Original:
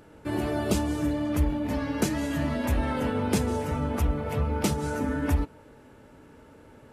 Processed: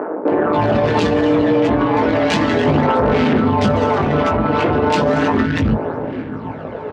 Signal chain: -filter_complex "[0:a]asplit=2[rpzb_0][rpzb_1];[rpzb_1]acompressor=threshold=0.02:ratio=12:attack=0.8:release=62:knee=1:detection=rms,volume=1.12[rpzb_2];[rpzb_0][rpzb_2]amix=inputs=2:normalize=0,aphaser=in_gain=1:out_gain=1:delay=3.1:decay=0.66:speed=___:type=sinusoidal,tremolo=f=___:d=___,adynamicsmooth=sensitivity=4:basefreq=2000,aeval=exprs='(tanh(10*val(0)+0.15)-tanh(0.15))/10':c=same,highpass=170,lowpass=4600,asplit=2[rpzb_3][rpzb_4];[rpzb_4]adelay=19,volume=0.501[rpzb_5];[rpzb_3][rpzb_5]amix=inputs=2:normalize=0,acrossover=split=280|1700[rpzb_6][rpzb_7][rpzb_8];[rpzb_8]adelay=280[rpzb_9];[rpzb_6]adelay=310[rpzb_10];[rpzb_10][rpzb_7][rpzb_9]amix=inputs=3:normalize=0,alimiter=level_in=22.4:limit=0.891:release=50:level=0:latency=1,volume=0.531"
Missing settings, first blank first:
0.34, 170, 0.889